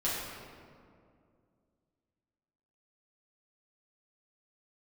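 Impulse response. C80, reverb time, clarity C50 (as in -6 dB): 1.0 dB, 2.3 s, -1.0 dB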